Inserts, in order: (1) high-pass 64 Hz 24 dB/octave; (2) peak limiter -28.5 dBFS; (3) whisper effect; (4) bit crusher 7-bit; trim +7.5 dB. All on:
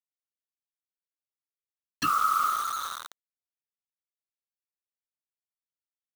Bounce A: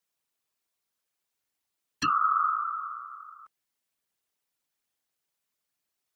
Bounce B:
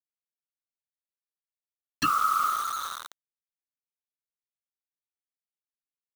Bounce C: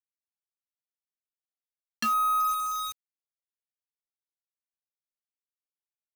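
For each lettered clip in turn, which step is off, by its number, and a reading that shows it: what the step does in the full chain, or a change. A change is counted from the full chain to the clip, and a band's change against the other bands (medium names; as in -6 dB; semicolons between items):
4, distortion -12 dB; 1, 250 Hz band +2.0 dB; 3, 2 kHz band -3.5 dB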